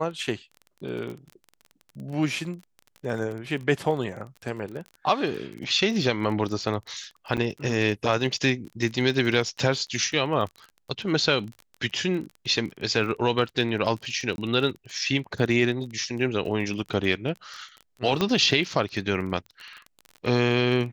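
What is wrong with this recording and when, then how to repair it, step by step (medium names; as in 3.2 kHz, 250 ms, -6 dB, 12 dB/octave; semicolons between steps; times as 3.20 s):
crackle 25 per s -33 dBFS
7.37–7.38 s: dropout 7.5 ms
14.36–14.38 s: dropout 21 ms
18.21 s: pop -10 dBFS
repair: de-click; interpolate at 7.37 s, 7.5 ms; interpolate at 14.36 s, 21 ms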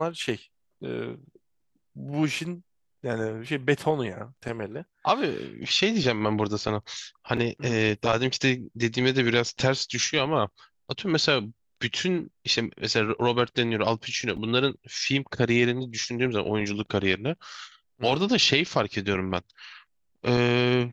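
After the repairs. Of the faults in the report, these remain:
18.21 s: pop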